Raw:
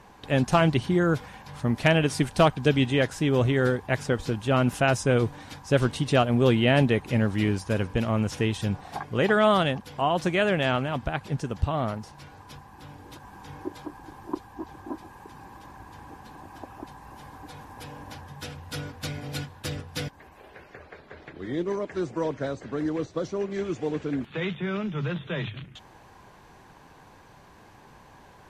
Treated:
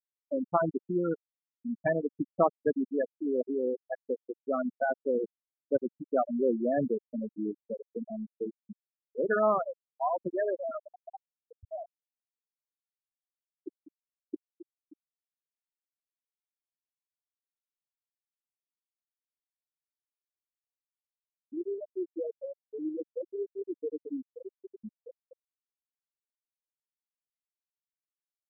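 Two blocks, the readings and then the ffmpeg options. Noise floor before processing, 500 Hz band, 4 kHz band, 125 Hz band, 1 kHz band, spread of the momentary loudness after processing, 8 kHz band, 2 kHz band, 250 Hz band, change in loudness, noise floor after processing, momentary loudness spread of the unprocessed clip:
-52 dBFS, -5.0 dB, under -40 dB, -22.0 dB, -7.0 dB, 18 LU, under -35 dB, -13.5 dB, -8.5 dB, -7.0 dB, under -85 dBFS, 22 LU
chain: -filter_complex "[0:a]acrossover=split=210 2500:gain=0.178 1 0.2[s0][s1][s2];[s0][s1][s2]amix=inputs=3:normalize=0,afftfilt=real='re*gte(hypot(re,im),0.282)':imag='im*gte(hypot(re,im),0.282)':win_size=1024:overlap=0.75,volume=0.668"

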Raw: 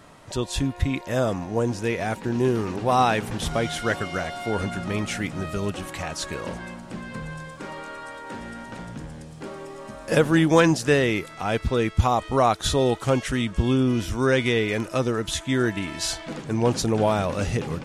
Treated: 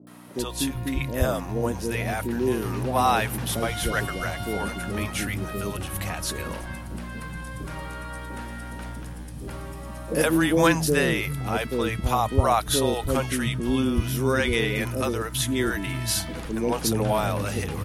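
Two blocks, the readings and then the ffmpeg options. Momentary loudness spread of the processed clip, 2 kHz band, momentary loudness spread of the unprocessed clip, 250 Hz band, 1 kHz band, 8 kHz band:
14 LU, 0.0 dB, 16 LU, -2.0 dB, -1.0 dB, +3.0 dB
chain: -filter_complex "[0:a]aeval=exprs='val(0)+0.0158*(sin(2*PI*60*n/s)+sin(2*PI*2*60*n/s)/2+sin(2*PI*3*60*n/s)/3+sin(2*PI*4*60*n/s)/4+sin(2*PI*5*60*n/s)/5)':c=same,aexciter=amount=5:drive=6.6:freq=10000,acrossover=split=170|520[s0][s1][s2];[s2]adelay=70[s3];[s0]adelay=390[s4];[s4][s1][s3]amix=inputs=3:normalize=0"

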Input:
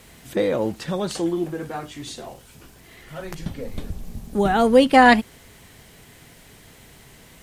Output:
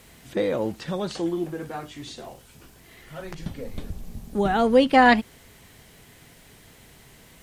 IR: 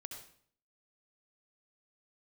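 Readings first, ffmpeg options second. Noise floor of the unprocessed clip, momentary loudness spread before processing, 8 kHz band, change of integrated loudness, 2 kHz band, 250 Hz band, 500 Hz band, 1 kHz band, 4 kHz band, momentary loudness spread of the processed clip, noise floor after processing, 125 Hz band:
-49 dBFS, 23 LU, -6.5 dB, -3.0 dB, -3.0 dB, -3.0 dB, -3.0 dB, -3.0 dB, -3.0 dB, 23 LU, -52 dBFS, -3.0 dB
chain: -filter_complex "[0:a]acrossover=split=6200[s0][s1];[s1]acompressor=threshold=0.002:ratio=4:attack=1:release=60[s2];[s0][s2]amix=inputs=2:normalize=0,highshelf=f=9200:g=4.5,volume=0.708"

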